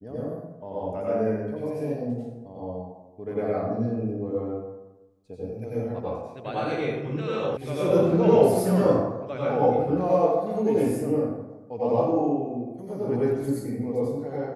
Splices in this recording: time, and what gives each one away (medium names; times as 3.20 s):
7.57 s: sound stops dead